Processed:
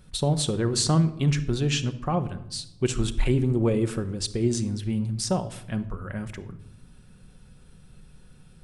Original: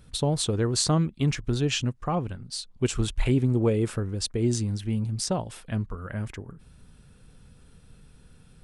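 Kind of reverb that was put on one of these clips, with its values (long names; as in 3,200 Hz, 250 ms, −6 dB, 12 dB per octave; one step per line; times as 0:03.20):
rectangular room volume 2,600 cubic metres, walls furnished, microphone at 1 metre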